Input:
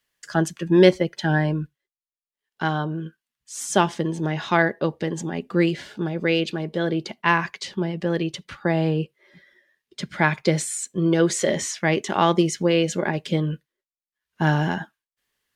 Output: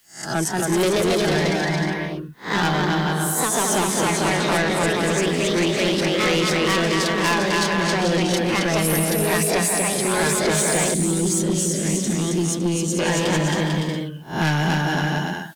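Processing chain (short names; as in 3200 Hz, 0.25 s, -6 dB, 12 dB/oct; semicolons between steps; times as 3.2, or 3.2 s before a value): spectral swells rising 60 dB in 0.30 s; bouncing-ball echo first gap 0.27 s, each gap 0.65×, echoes 5; echoes that change speed 0.221 s, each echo +2 st, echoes 2; notch 7200 Hz, Q 23; AGC gain up to 11.5 dB; 10.94–12.99 EQ curve 290 Hz 0 dB, 850 Hz -21 dB, 10000 Hz 0 dB; soft clip -13 dBFS, distortion -11 dB; high shelf 5300 Hz +11.5 dB; three-band squash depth 40%; gain -2 dB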